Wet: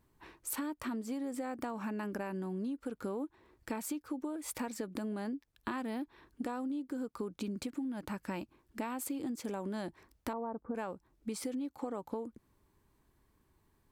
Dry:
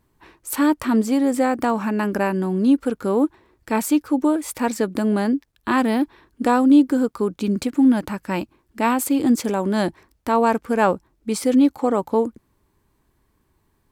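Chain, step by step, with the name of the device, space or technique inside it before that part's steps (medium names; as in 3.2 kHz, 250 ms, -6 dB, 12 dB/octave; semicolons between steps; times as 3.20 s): 10.33–10.75 s: low-pass 1.1 kHz 24 dB/octave; serial compression, leveller first (compression 2:1, threshold -19 dBFS, peak gain reduction 6 dB; compression 10:1, threshold -29 dBFS, peak gain reduction 14.5 dB); trim -6 dB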